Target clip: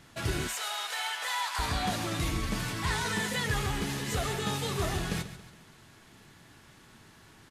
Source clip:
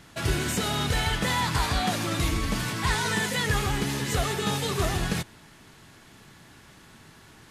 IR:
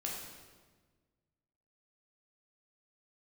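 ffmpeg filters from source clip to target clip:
-filter_complex "[0:a]aecho=1:1:139|278|417|556:0.2|0.0898|0.0404|0.0182,asoftclip=type=tanh:threshold=0.211,asettb=1/sr,asplit=3[s0][s1][s2];[s0]atrim=end=0.474[s3];[s1]atrim=start=0.47:end=1.59,asetpts=PTS-STARTPTS,afade=t=in:d=0.004:c=qsin,afade=t=out:st=1.116:d=0.004:c=qsin,highpass=f=690:w=0.5412,highpass=f=690:w=1.3066[s4];[s2]atrim=start=1.586[s5];[s3][s4]acrossfade=d=0.004:c1=hsin:c2=qsin[s6];[s6][s5]acrossfade=d=0.004:c1=qsin:c2=hsin,flanger=delay=8:depth=3.8:regen=-67:speed=0.88:shape=sinusoidal"

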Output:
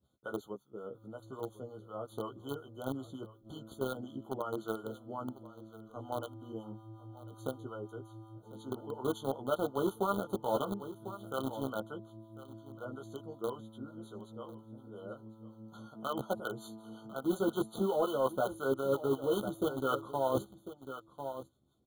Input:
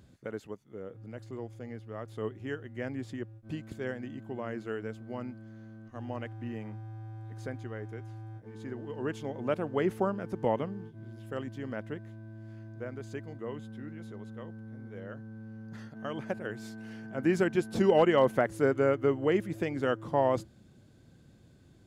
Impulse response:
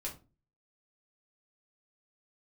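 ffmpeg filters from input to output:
-filter_complex "[0:a]agate=range=0.0224:threshold=0.00355:ratio=3:detection=peak,acrossover=split=690[s0][s1];[s0]aeval=exprs='val(0)*(1-0.7/2+0.7/2*cos(2*PI*5.5*n/s))':c=same[s2];[s1]aeval=exprs='val(0)*(1-0.7/2-0.7/2*cos(2*PI*5.5*n/s))':c=same[s3];[s2][s3]amix=inputs=2:normalize=0,asplit=2[s4][s5];[s5]adelay=15,volume=0.631[s6];[s4][s6]amix=inputs=2:normalize=0,asplit=2[s7][s8];[s8]aeval=exprs='val(0)*gte(abs(val(0)),0.0316)':c=same,volume=0.668[s9];[s7][s9]amix=inputs=2:normalize=0,acontrast=78,lowshelf=f=390:g=-10,aexciter=amount=2.5:drive=8.3:freq=9200,highshelf=f=6100:g=-9,aecho=1:1:1048:0.126,areverse,acompressor=threshold=0.0562:ratio=16,areverse,afftfilt=real='re*eq(mod(floor(b*sr/1024/1500),2),0)':imag='im*eq(mod(floor(b*sr/1024/1500),2),0)':win_size=1024:overlap=0.75,volume=0.841"

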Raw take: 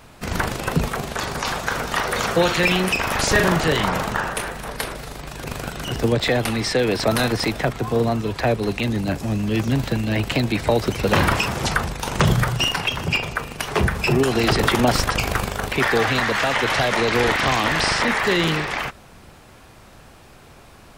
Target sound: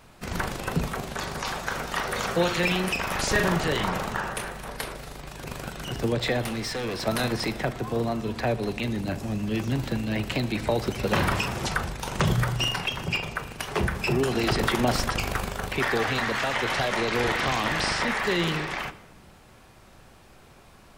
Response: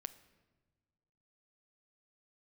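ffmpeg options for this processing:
-filter_complex "[0:a]asettb=1/sr,asplit=3[s0][s1][s2];[s0]atrim=end=6.444[s3];[s1]atrim=start=6.44:end=7.07,asetpts=PTS-STARTPTS,afade=t=in:d=0.004:c=qsin,afade=t=out:st=0.626:d=0.004:c=qsin,volume=11.9,asoftclip=hard,volume=0.0841[s4];[s2]atrim=start=7.066[s5];[s3][s4]acrossfade=d=0.004:c1=hsin:c2=qsin[s6];[s6][s5]acrossfade=d=0.004:c1=qsin:c2=hsin[s7];[1:a]atrim=start_sample=2205,asetrate=57330,aresample=44100[s8];[s7][s8]afir=irnorm=-1:irlink=0"

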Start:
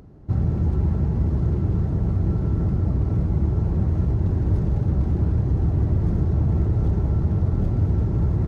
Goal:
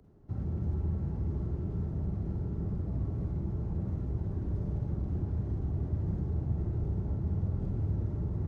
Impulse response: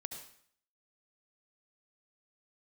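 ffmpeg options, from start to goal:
-filter_complex "[0:a]acrossover=split=110|350|790[s0][s1][s2][s3];[s3]alimiter=level_in=10.6:limit=0.0631:level=0:latency=1,volume=0.0944[s4];[s0][s1][s2][s4]amix=inputs=4:normalize=0[s5];[1:a]atrim=start_sample=2205,asetrate=70560,aresample=44100[s6];[s5][s6]afir=irnorm=-1:irlink=0,volume=0.531"

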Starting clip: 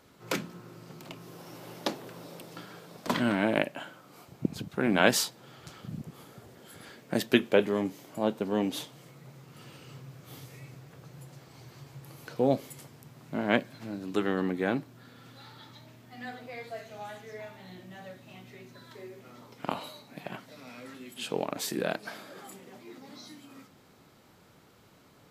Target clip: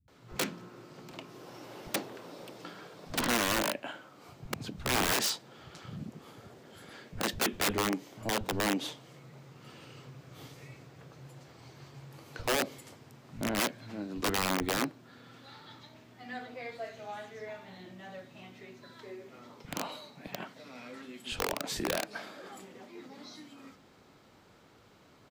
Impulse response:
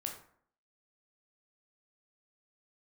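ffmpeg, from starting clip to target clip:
-filter_complex "[0:a]equalizer=f=12000:w=1:g=-10.5,aeval=exprs='(mod(11.9*val(0)+1,2)-1)/11.9':c=same,acrossover=split=150[s0][s1];[s1]adelay=80[s2];[s0][s2]amix=inputs=2:normalize=0"

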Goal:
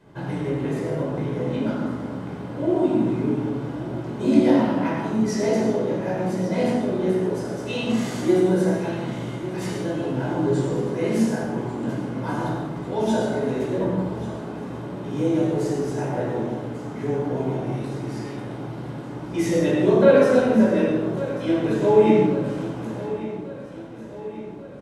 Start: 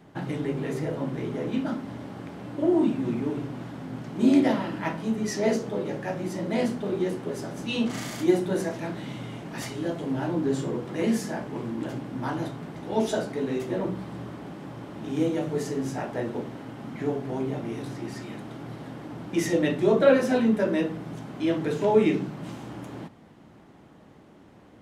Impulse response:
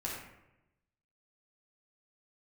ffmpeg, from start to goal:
-filter_complex "[0:a]aecho=1:1:1141|2282|3423|4564|5705|6846:0.188|0.105|0.0591|0.0331|0.0185|0.0104[s0];[1:a]atrim=start_sample=2205,asetrate=24696,aresample=44100[s1];[s0][s1]afir=irnorm=-1:irlink=0,volume=0.708"

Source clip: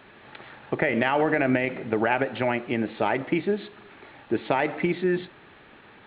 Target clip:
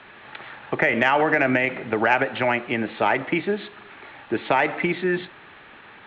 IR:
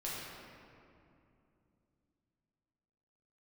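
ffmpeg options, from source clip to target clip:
-filter_complex "[0:a]lowpass=3900,acrossover=split=270|740[s0][s1][s2];[s2]acontrast=77[s3];[s0][s1][s3]amix=inputs=3:normalize=0"

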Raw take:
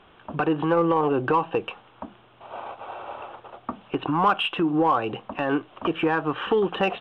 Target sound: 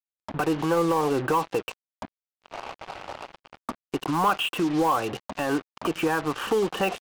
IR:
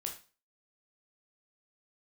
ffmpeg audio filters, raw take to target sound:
-filter_complex "[0:a]asplit=2[s0][s1];[s1]asoftclip=type=tanh:threshold=0.0841,volume=0.355[s2];[s0][s2]amix=inputs=2:normalize=0,acrusher=bits=4:mix=0:aa=0.5,volume=0.668"

